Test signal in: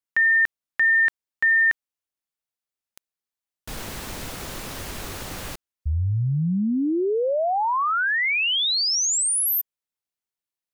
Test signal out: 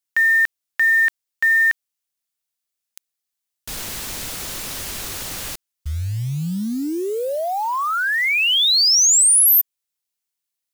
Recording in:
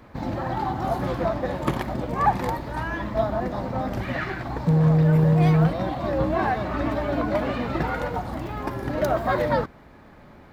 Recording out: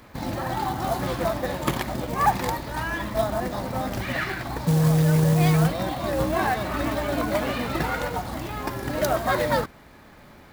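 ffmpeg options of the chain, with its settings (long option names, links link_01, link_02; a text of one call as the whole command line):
ffmpeg -i in.wav -af "acrusher=bits=7:mode=log:mix=0:aa=0.000001,highshelf=frequency=2400:gain=11,volume=-1.5dB" out.wav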